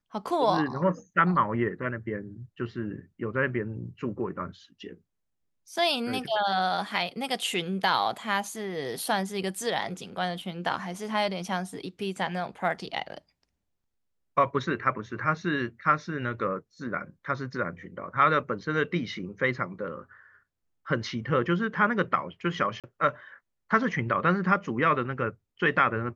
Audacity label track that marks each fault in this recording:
22.800000	22.840000	drop-out 37 ms

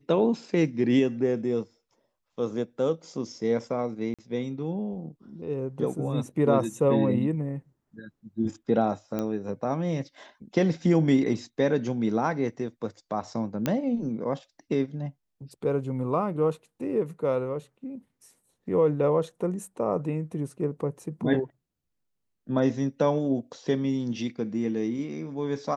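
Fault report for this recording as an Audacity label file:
4.140000	4.190000	drop-out 46 ms
9.190000	9.190000	click −17 dBFS
13.660000	13.660000	click −12 dBFS

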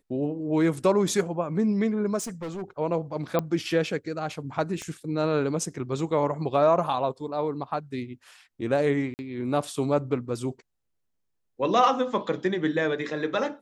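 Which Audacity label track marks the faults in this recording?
2.190000	2.630000	clipping −30.5 dBFS
3.390000	3.390000	click −13 dBFS
4.820000	4.820000	click −22 dBFS
9.140000	9.190000	drop-out 49 ms

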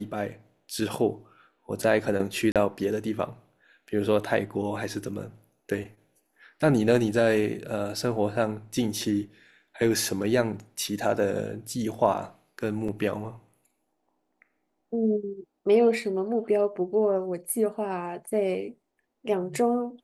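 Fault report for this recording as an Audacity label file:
2.520000	2.560000	drop-out 37 ms
12.880000	12.880000	drop-out 4.2 ms

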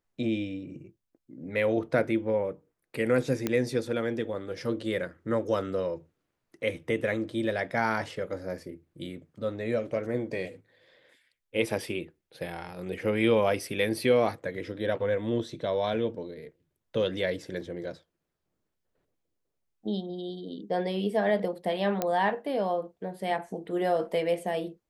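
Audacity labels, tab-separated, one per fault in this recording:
3.470000	3.470000	click −13 dBFS
22.020000	22.020000	click −13 dBFS

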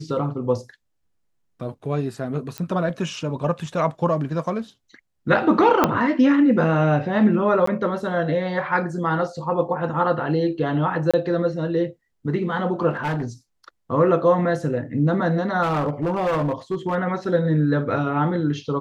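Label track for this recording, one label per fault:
2.580000	2.580000	click −14 dBFS
5.840000	5.840000	click −3 dBFS
7.660000	7.670000	drop-out 14 ms
11.110000	11.140000	drop-out 26 ms
12.900000	13.250000	clipping −20.5 dBFS
15.620000	16.960000	clipping −18 dBFS

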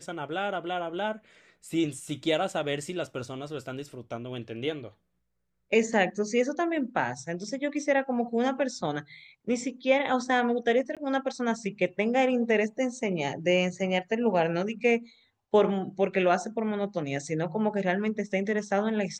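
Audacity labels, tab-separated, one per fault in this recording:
10.950000	10.970000	drop-out 17 ms

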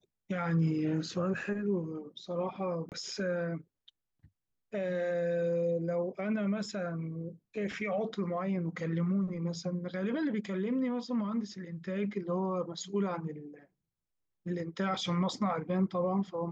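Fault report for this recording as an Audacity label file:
2.890000	2.920000	drop-out 28 ms

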